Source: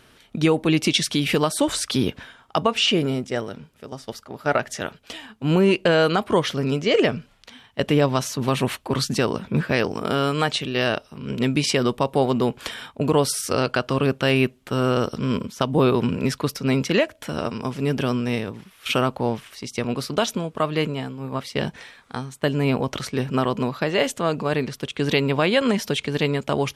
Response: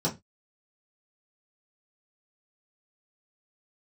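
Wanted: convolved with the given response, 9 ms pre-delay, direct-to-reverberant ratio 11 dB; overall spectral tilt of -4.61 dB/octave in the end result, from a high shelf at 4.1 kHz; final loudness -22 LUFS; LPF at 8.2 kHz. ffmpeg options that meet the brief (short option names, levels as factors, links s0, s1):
-filter_complex "[0:a]lowpass=8200,highshelf=f=4100:g=4.5,asplit=2[s0][s1];[1:a]atrim=start_sample=2205,adelay=9[s2];[s1][s2]afir=irnorm=-1:irlink=0,volume=0.106[s3];[s0][s3]amix=inputs=2:normalize=0,volume=0.891"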